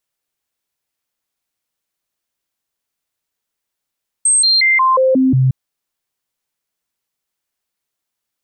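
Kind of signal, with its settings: stepped sine 8360 Hz down, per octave 1, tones 7, 0.18 s, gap 0.00 s -9 dBFS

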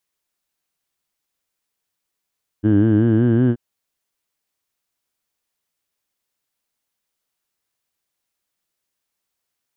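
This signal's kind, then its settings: formant vowel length 0.93 s, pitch 102 Hz, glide +3.5 st, F1 300 Hz, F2 1600 Hz, F3 3000 Hz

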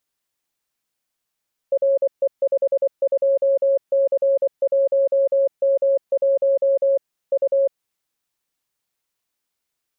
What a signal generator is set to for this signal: Morse "RE52C1M1 U" 24 wpm 549 Hz -14 dBFS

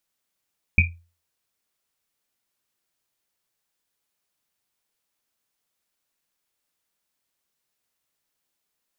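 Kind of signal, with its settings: Risset drum, pitch 85 Hz, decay 0.35 s, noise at 2400 Hz, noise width 190 Hz, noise 45%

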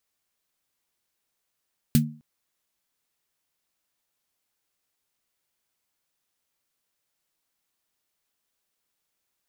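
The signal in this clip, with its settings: snare drum length 0.26 s, tones 150 Hz, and 230 Hz, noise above 1600 Hz, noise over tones -7 dB, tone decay 0.38 s, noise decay 0.11 s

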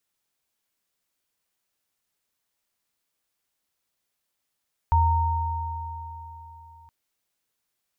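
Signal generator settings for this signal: sine partials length 1.97 s, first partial 82.9 Hz, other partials 923 Hz, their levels -1 dB, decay 3.31 s, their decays 3.76 s, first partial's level -17.5 dB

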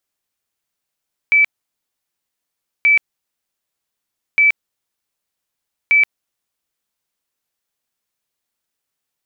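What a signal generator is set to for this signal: tone bursts 2310 Hz, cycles 291, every 1.53 s, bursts 4, -8.5 dBFS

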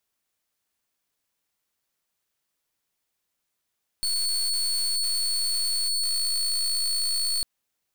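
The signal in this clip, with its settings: pulse 4410 Hz, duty 29% -25.5 dBFS 3.40 s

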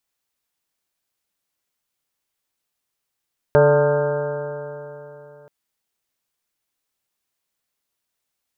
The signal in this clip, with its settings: stretched partials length 1.93 s, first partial 144 Hz, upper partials -13.5/4/5.5/-13/-5/-14/-13/-10.5/-9 dB, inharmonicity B 0.0021, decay 3.29 s, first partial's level -17.5 dB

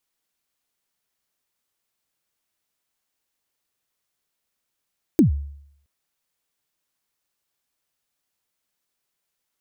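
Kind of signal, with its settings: kick drum length 0.67 s, from 360 Hz, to 71 Hz, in 0.118 s, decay 0.70 s, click on, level -8.5 dB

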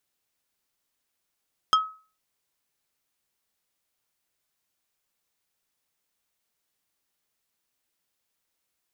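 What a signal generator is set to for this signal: wood hit plate, lowest mode 1280 Hz, decay 0.37 s, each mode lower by 5.5 dB, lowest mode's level -13.5 dB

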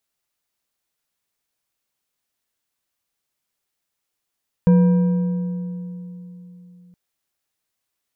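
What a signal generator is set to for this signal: metal hit bar, length 2.27 s, lowest mode 178 Hz, decay 3.64 s, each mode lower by 11 dB, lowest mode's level -9 dB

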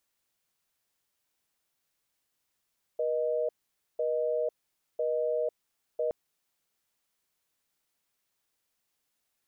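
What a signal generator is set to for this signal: call progress tone busy tone, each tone -29 dBFS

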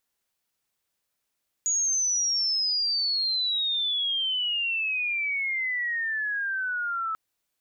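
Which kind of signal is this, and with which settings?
chirp logarithmic 6800 Hz -> 1300 Hz -22 dBFS -> -26.5 dBFS 5.49 s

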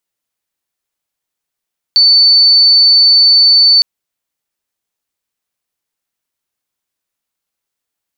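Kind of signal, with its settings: tone sine 4510 Hz -4 dBFS 1.86 s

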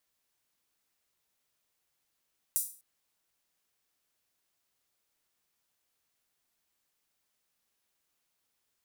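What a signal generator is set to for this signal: open hi-hat length 0.25 s, high-pass 8800 Hz, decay 0.39 s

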